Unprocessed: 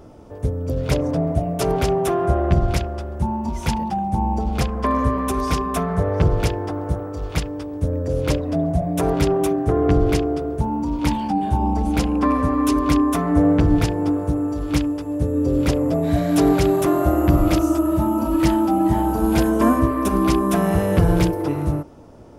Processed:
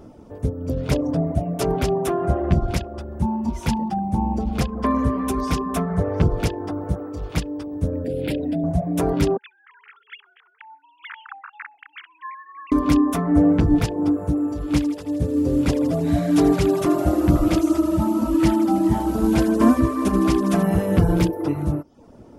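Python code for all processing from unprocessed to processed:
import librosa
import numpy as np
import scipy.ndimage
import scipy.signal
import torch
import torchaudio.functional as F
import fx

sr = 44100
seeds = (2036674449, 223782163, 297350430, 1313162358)

y = fx.chain(x, sr, fx.highpass(hz=230.0, slope=6),
    fx.fixed_phaser(hz=2700.0, stages=4),
    fx.env_flatten(amount_pct=70), at=(8.04, 8.64))
y = fx.chain(y, sr, fx.sine_speech(),
    fx.cheby2_highpass(hz=590.0, order=4, stop_db=50),
    fx.echo_wet_highpass(ms=65, feedback_pct=42, hz=2400.0, wet_db=-21), at=(9.37, 12.72))
y = fx.chain(y, sr, fx.cvsd(bps=64000),
    fx.echo_thinned(ms=80, feedback_pct=72, hz=880.0, wet_db=-8.5), at=(14.71, 20.63))
y = fx.dereverb_blind(y, sr, rt60_s=0.56)
y = fx.peak_eq(y, sr, hz=230.0, db=6.0, octaves=0.98)
y = F.gain(torch.from_numpy(y), -2.0).numpy()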